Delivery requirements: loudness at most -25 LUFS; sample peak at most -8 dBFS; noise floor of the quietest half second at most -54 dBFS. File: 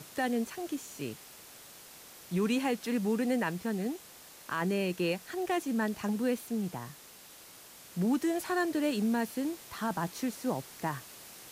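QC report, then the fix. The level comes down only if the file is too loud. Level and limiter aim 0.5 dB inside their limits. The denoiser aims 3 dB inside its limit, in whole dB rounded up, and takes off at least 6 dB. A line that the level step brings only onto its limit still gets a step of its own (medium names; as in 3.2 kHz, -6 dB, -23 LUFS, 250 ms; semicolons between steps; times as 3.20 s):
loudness -33.0 LUFS: pass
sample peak -20.0 dBFS: pass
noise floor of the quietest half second -53 dBFS: fail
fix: noise reduction 6 dB, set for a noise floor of -53 dBFS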